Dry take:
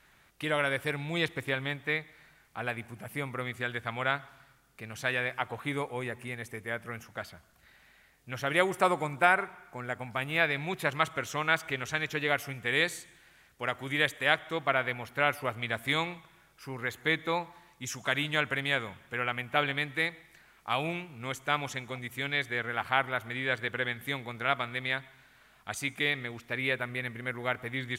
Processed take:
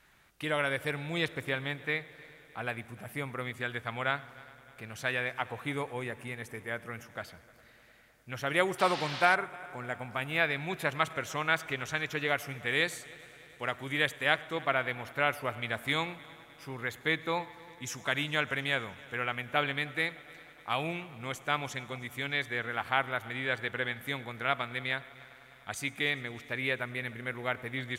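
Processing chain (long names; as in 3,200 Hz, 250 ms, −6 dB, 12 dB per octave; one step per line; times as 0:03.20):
echo machine with several playback heads 101 ms, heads first and third, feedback 74%, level −24 dB
0:08.78–0:09.34: noise in a band 680–4,600 Hz −38 dBFS
level −1.5 dB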